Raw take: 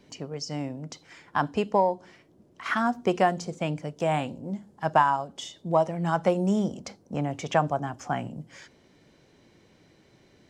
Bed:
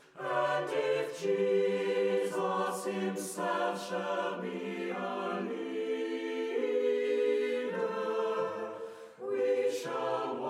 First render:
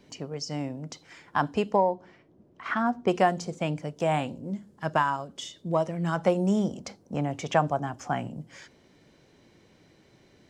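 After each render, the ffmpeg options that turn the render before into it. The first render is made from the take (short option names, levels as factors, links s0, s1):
-filter_complex "[0:a]asettb=1/sr,asplit=3[s0][s1][s2];[s0]atrim=end=1.764[s3];[s1]atrim=start=1.76:end=3.08,asetpts=PTS-STARTPTS,afade=t=in:d=0.004:c=qsin,afade=t=out:st=1.316:d=0.004:c=qsin,lowpass=f=1800:p=1[s4];[s2]atrim=start=3.076[s5];[s3][s4]acrossfade=d=0.004:c1=hsin:c2=qsin[s6];[s6][s5]acrossfade=d=0.004:c1=qsin:c2=hsin,asettb=1/sr,asplit=3[s7][s8][s9];[s7]atrim=end=4.374[s10];[s8]atrim=start=4.37:end=6.17,asetpts=PTS-STARTPTS,afade=t=in:d=0.004:c=qsin,afade=t=out:st=1.796:d=0.004:c=qsin,equalizer=f=800:t=o:w=0.56:g=-8[s11];[s9]atrim=start=6.166[s12];[s10][s11]acrossfade=d=0.004:c1=hsin:c2=qsin[s13];[s13][s12]acrossfade=d=0.004:c1=qsin:c2=hsin"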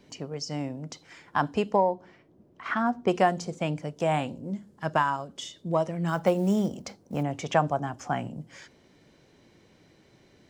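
-filter_complex "[0:a]asettb=1/sr,asplit=3[s0][s1][s2];[s0]atrim=end=6.084[s3];[s1]atrim=start=6.08:end=7.23,asetpts=PTS-STARTPTS,afade=t=in:d=0.004:c=qsin,afade=t=out:st=1.146:d=0.004:c=qsin,acrusher=bits=8:mode=log:mix=0:aa=0.000001[s4];[s2]atrim=start=7.226[s5];[s3][s4]acrossfade=d=0.004:c1=hsin:c2=qsin[s6];[s6][s5]acrossfade=d=0.004:c1=qsin:c2=hsin"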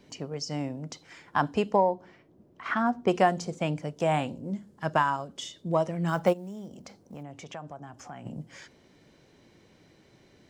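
-filter_complex "[0:a]asplit=3[s0][s1][s2];[s0]afade=t=out:st=6.32:d=0.02[s3];[s1]acompressor=threshold=0.00562:ratio=2.5:attack=3.2:release=140:knee=1:detection=peak,afade=t=in:st=6.32:d=0.02,afade=t=out:st=8.25:d=0.02[s4];[s2]afade=t=in:st=8.25:d=0.02[s5];[s3][s4][s5]amix=inputs=3:normalize=0"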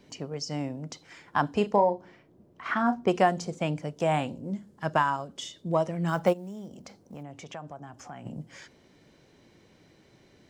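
-filter_complex "[0:a]asettb=1/sr,asplit=3[s0][s1][s2];[s0]atrim=end=1.544[s3];[s1]atrim=start=1.54:end=3.07,asetpts=PTS-STARTPTS,afade=t=in:d=0.004:c=qsin,afade=t=out:st=1.526:d=0.004:c=qsin,asplit=2[s4][s5];[s5]adelay=34,volume=0.335[s6];[s4][s6]amix=inputs=2:normalize=0,atrim=end_sample=67473[s7];[s2]atrim=start=3.066[s8];[s3][s7]acrossfade=d=0.004:c1=hsin:c2=qsin[s9];[s9][s8]acrossfade=d=0.004:c1=qsin:c2=hsin"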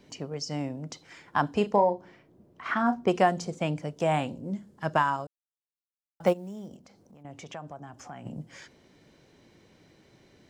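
-filter_complex "[0:a]asettb=1/sr,asplit=3[s0][s1][s2];[s0]atrim=end=6.764[s3];[s1]atrim=start=6.76:end=7.25,asetpts=PTS-STARTPTS,afade=t=in:d=0.004:c=qsin,afade=t=out:st=0.486:d=0.004:c=qsin,acompressor=threshold=0.00178:ratio=2.5:attack=3.2:release=140:knee=1:detection=peak[s4];[s2]atrim=start=7.246[s5];[s3][s4]acrossfade=d=0.004:c1=hsin:c2=qsin[s6];[s6][s5]acrossfade=d=0.004:c1=qsin:c2=hsin,asplit=3[s7][s8][s9];[s7]atrim=end=5.27,asetpts=PTS-STARTPTS,afade=t=out:st=5.266:d=0.004:c=hsin[s10];[s8]atrim=start=5.27:end=6.2,asetpts=PTS-STARTPTS,volume=0[s11];[s9]atrim=start=6.2,asetpts=PTS-STARTPTS,afade=t=in:d=0.004:c=hsin[s12];[s10][s11][s12]concat=n=3:v=0:a=1"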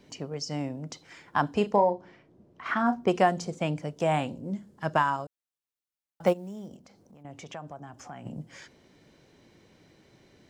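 -filter_complex "[0:a]asettb=1/sr,asplit=3[s0][s1][s2];[s0]atrim=end=1.884[s3];[s1]atrim=start=1.88:end=2.66,asetpts=PTS-STARTPTS,afade=t=in:d=0.004:c=qsin,afade=t=out:st=0.776:d=0.004:c=qsin,lowpass=7300[s4];[s2]atrim=start=2.656[s5];[s3][s4]acrossfade=d=0.004:c1=hsin:c2=qsin[s6];[s6][s5]acrossfade=d=0.004:c1=qsin:c2=hsin"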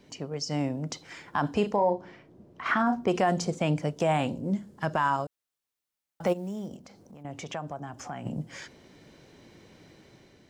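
-af "dynaudnorm=f=220:g=5:m=1.78,alimiter=limit=0.178:level=0:latency=1:release=51"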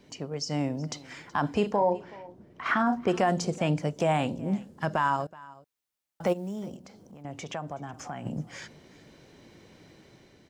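-af "aecho=1:1:374:0.0891"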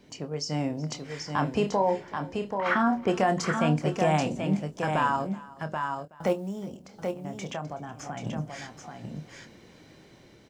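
-filter_complex "[0:a]asplit=2[s0][s1];[s1]adelay=26,volume=0.335[s2];[s0][s2]amix=inputs=2:normalize=0,aecho=1:1:783:0.531"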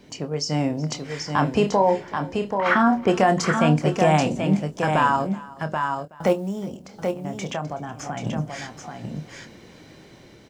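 -af "volume=2"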